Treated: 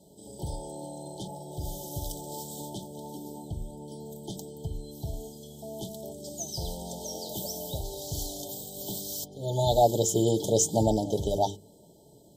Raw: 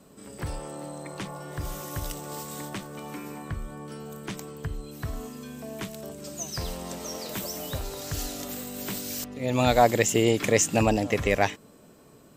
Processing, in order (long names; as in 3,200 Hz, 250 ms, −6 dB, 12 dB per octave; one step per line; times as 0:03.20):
mains-hum notches 50/100/150/200/250/300/350/400/450 Hz
brick-wall band-stop 930–3,000 Hz
notch comb filter 250 Hz